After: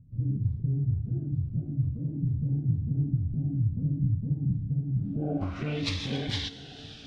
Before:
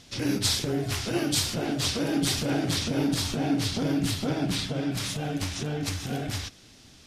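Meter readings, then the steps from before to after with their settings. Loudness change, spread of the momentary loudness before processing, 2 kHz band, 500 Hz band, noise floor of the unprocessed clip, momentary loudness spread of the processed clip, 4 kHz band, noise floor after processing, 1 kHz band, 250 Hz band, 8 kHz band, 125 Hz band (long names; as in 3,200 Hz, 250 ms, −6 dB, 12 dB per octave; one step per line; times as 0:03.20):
−2.5 dB, 6 LU, can't be measured, −10.0 dB, −53 dBFS, 4 LU, −10.0 dB, −45 dBFS, below −10 dB, −5.0 dB, below −20 dB, +5.0 dB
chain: feedback delay with all-pass diffusion 536 ms, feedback 57%, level −16 dB
low-pass filter sweep 130 Hz → 3,600 Hz, 0:04.95–0:05.80
phaser whose notches keep moving one way falling 0.52 Hz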